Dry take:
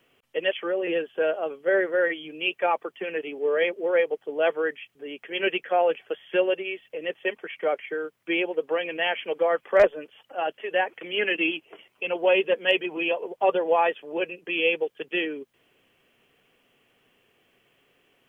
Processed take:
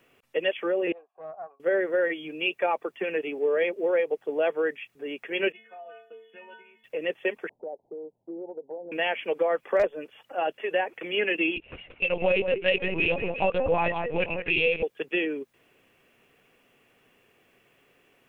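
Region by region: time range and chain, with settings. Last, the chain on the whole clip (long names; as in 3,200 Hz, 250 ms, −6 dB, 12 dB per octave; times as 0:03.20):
0:00.92–0:01.60: formant resonators in series a + low-shelf EQ 470 Hz −10 dB + highs frequency-modulated by the lows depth 0.12 ms
0:05.52–0:06.84: stiff-string resonator 220 Hz, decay 0.57 s, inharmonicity 0.008 + downward compressor 5 to 1, threshold −43 dBFS
0:07.49–0:08.92: Butterworth low-pass 920 Hz 96 dB per octave + downward compressor 2.5 to 1, threshold −43 dBFS
0:11.56–0:14.83: parametric band 2,800 Hz +6 dB 1 octave + delay that swaps between a low-pass and a high-pass 174 ms, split 2,300 Hz, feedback 54%, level −9 dB + linear-prediction vocoder at 8 kHz pitch kept
whole clip: notch filter 3,100 Hz, Q 9; dynamic equaliser 1,400 Hz, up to −4 dB, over −36 dBFS, Q 1; downward compressor 3 to 1, threshold −24 dBFS; level +2.5 dB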